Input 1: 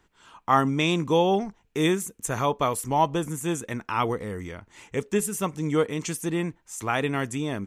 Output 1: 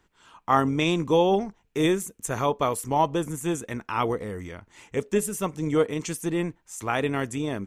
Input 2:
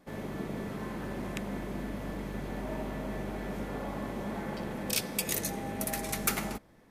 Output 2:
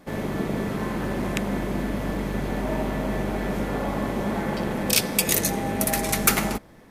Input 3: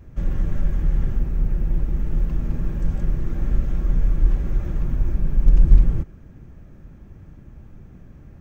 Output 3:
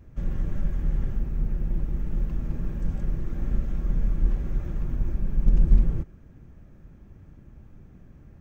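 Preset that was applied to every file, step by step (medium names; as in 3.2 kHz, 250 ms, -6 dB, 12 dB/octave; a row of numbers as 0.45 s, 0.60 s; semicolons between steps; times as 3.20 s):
dynamic bell 430 Hz, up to +3 dB, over -33 dBFS, Q 0.96; AM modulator 180 Hz, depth 15%; peak normalisation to -6 dBFS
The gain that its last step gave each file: -0.5 dB, +11.0 dB, -4.5 dB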